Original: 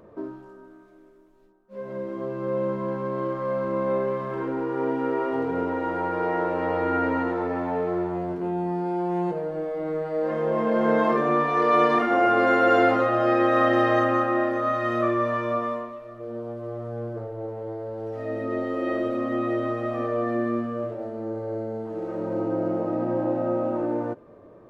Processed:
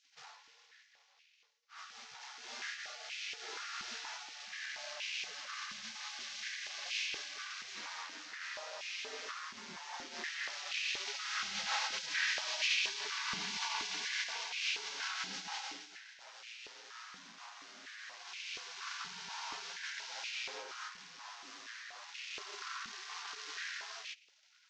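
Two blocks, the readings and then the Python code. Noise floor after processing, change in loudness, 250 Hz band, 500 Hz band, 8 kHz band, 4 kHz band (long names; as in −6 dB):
−68 dBFS, −14.5 dB, −36.0 dB, −33.0 dB, can't be measured, +7.5 dB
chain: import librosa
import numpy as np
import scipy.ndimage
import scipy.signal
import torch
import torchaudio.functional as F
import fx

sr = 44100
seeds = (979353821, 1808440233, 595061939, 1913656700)

y = fx.cvsd(x, sr, bps=32000)
y = fx.spec_gate(y, sr, threshold_db=-30, keep='weak')
y = fx.filter_held_highpass(y, sr, hz=4.2, low_hz=210.0, high_hz=2500.0)
y = y * 10.0 ** (1.5 / 20.0)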